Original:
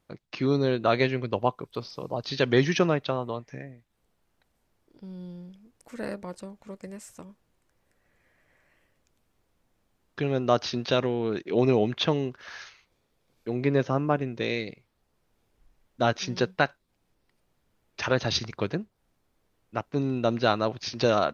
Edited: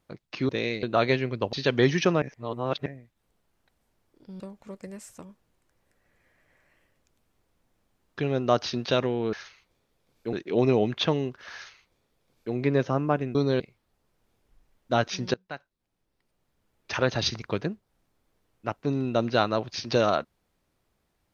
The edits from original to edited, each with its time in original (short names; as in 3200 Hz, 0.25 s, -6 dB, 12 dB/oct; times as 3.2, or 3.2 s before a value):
0.49–0.74 swap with 14.35–14.69
1.44–2.27 cut
2.96–3.6 reverse
5.14–6.4 cut
12.54–13.54 copy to 11.33
16.43–18 fade in, from -22.5 dB